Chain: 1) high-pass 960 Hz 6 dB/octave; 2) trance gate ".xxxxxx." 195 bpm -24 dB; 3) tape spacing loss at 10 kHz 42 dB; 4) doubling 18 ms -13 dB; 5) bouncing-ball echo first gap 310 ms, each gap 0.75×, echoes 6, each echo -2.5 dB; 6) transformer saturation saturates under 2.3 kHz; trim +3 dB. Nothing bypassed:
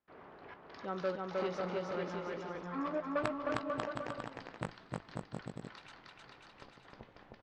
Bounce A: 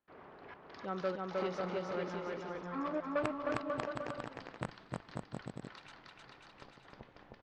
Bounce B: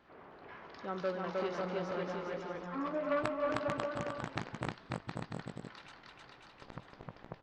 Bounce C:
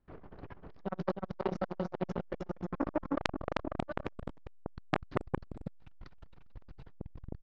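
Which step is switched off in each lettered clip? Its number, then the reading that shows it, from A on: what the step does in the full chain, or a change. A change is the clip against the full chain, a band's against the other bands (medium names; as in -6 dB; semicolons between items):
4, crest factor change -2.0 dB; 2, loudness change +1.5 LU; 1, 125 Hz band +5.0 dB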